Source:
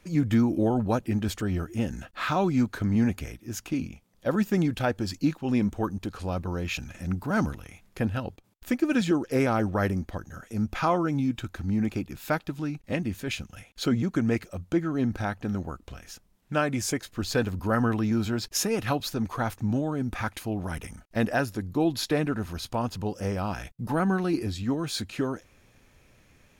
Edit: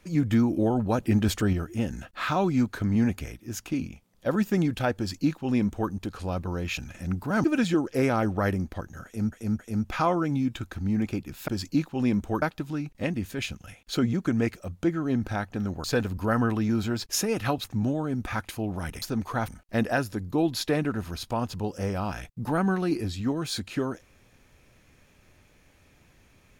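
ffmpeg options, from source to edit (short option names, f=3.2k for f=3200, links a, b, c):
-filter_complex "[0:a]asplit=12[a][b][c][d][e][f][g][h][i][j][k][l];[a]atrim=end=0.982[m];[b]atrim=start=0.978:end=1.532,asetpts=PTS-STARTPTS,volume=4.5dB[n];[c]atrim=start=1.528:end=7.442[o];[d]atrim=start=8.808:end=10.692[p];[e]atrim=start=10.418:end=10.692[q];[f]atrim=start=10.418:end=12.312[r];[g]atrim=start=4.968:end=5.912[s];[h]atrim=start=12.308:end=15.732[t];[i]atrim=start=17.258:end=19.062[u];[j]atrim=start=19.518:end=20.902[v];[k]atrim=start=19.058:end=19.522[w];[l]atrim=start=20.898[x];[m][n]acrossfade=d=0.004:c1=hsin:c2=hsin[y];[y][o]acrossfade=d=0.004:c1=hsin:c2=hsin[z];[z][p]acrossfade=d=0.004:c1=hsin:c2=hsin[aa];[aa][q]acrossfade=d=0.004:c1=hsin:c2=hsin[ab];[ab][r]acrossfade=d=0.004:c1=hsin:c2=hsin[ac];[ac][s]acrossfade=d=0.004:c1=hsin:c2=hsin[ad];[ad][t]acrossfade=d=0.004:c1=hsin:c2=hsin[ae];[ae][u]acrossfade=d=0.004:c1=hsin:c2=hsin[af];[af][v]acrossfade=d=0.004:c1=hsin:c2=hsin[ag];[ag][w]acrossfade=d=0.004:c1=hsin:c2=hsin[ah];[ah][x]acrossfade=d=0.004:c1=hsin:c2=hsin"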